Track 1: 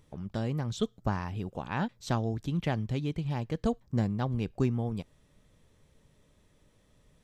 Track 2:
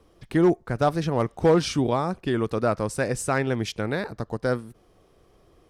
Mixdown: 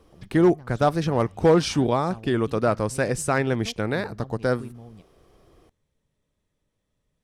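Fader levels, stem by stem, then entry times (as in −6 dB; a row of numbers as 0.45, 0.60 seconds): −12.0, +1.5 decibels; 0.00, 0.00 seconds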